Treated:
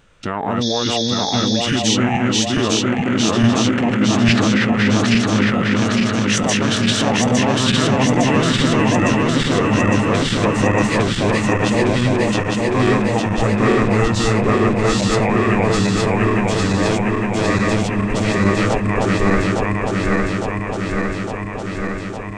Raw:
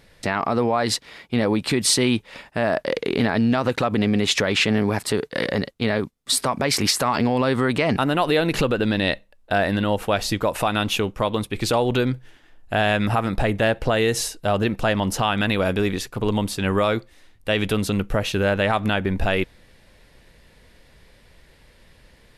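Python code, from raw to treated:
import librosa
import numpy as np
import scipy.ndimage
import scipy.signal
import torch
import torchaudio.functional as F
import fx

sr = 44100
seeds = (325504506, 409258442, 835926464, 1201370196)

y = fx.reverse_delay_fb(x, sr, ms=429, feedback_pct=84, wet_db=-0.5)
y = fx.formant_shift(y, sr, semitones=-6)
y = fx.spec_repair(y, sr, seeds[0], start_s=0.65, length_s=0.93, low_hz=3300.0, high_hz=6800.0, source='after')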